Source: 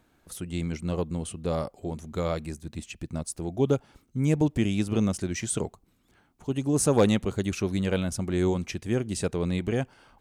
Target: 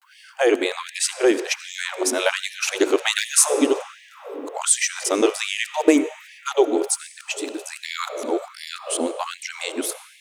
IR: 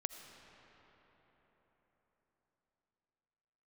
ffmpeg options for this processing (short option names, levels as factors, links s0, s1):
-filter_complex "[0:a]areverse,asplit=2[s0][s1];[1:a]atrim=start_sample=2205[s2];[s1][s2]afir=irnorm=-1:irlink=0,volume=1.78[s3];[s0][s3]amix=inputs=2:normalize=0,afftfilt=real='re*gte(b*sr/1024,250*pow(1700/250,0.5+0.5*sin(2*PI*1.3*pts/sr)))':imag='im*gte(b*sr/1024,250*pow(1700/250,0.5+0.5*sin(2*PI*1.3*pts/sr)))':win_size=1024:overlap=0.75,volume=1.88"